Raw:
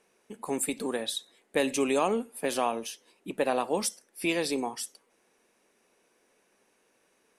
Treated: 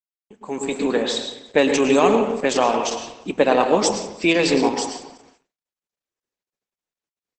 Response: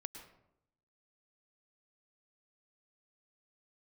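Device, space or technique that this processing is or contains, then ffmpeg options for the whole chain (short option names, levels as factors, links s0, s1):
speakerphone in a meeting room: -filter_complex "[0:a]asplit=3[s0][s1][s2];[s0]afade=t=out:st=1.94:d=0.02[s3];[s1]highshelf=f=3800:g=3,afade=t=in:st=1.94:d=0.02,afade=t=out:st=3.7:d=0.02[s4];[s2]afade=t=in:st=3.7:d=0.02[s5];[s3][s4][s5]amix=inputs=3:normalize=0,aecho=1:1:183|366|549:0.0841|0.0404|0.0194[s6];[1:a]atrim=start_sample=2205[s7];[s6][s7]afir=irnorm=-1:irlink=0,asplit=2[s8][s9];[s9]adelay=270,highpass=300,lowpass=3400,asoftclip=type=hard:threshold=0.0596,volume=0.0794[s10];[s8][s10]amix=inputs=2:normalize=0,dynaudnorm=f=190:g=7:m=7.08,agate=range=0.00355:threshold=0.00355:ratio=16:detection=peak" -ar 48000 -c:a libopus -b:a 12k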